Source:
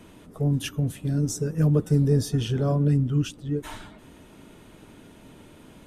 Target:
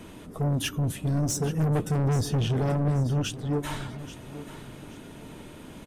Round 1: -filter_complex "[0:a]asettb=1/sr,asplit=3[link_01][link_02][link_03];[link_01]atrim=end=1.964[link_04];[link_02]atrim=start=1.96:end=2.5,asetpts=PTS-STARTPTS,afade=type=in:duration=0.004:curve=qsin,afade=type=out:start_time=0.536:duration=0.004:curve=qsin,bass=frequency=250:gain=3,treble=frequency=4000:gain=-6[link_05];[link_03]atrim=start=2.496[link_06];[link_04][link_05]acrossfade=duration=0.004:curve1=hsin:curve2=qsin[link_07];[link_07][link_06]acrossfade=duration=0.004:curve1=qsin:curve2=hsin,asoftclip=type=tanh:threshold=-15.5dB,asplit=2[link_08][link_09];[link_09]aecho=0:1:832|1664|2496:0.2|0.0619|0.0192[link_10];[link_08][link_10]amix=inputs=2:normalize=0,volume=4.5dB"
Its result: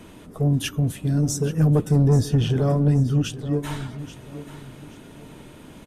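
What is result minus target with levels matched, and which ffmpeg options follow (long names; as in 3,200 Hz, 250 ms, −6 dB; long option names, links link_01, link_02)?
soft clipping: distortion −10 dB
-filter_complex "[0:a]asettb=1/sr,asplit=3[link_01][link_02][link_03];[link_01]atrim=end=1.964[link_04];[link_02]atrim=start=1.96:end=2.5,asetpts=PTS-STARTPTS,afade=type=in:duration=0.004:curve=qsin,afade=type=out:start_time=0.536:duration=0.004:curve=qsin,bass=frequency=250:gain=3,treble=frequency=4000:gain=-6[link_05];[link_03]atrim=start=2.496[link_06];[link_04][link_05]acrossfade=duration=0.004:curve1=hsin:curve2=qsin[link_07];[link_07][link_06]acrossfade=duration=0.004:curve1=qsin:curve2=hsin,asoftclip=type=tanh:threshold=-26.5dB,asplit=2[link_08][link_09];[link_09]aecho=0:1:832|1664|2496:0.2|0.0619|0.0192[link_10];[link_08][link_10]amix=inputs=2:normalize=0,volume=4.5dB"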